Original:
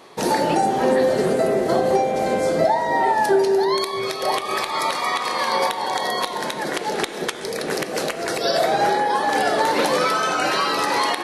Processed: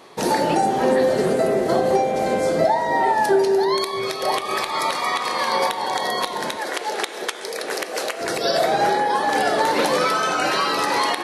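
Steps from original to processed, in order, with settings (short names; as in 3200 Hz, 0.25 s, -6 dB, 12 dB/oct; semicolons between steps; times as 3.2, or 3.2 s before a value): 6.56–8.21 HPF 440 Hz 12 dB/oct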